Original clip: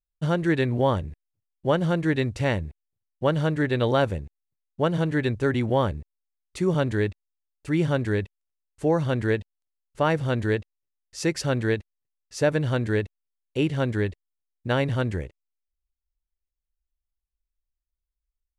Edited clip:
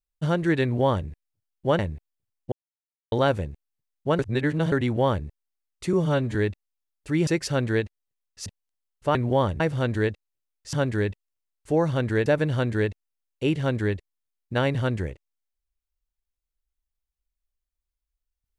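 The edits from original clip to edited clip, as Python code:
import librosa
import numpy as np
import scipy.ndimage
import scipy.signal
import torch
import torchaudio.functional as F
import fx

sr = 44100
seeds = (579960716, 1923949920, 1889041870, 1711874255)

y = fx.edit(x, sr, fx.duplicate(start_s=0.63, length_s=0.45, to_s=10.08),
    fx.cut(start_s=1.79, length_s=0.73),
    fx.silence(start_s=3.25, length_s=0.6),
    fx.reverse_span(start_s=4.92, length_s=0.53),
    fx.stretch_span(start_s=6.66, length_s=0.28, factor=1.5),
    fx.swap(start_s=7.86, length_s=1.53, other_s=11.21, other_length_s=1.19), tone=tone)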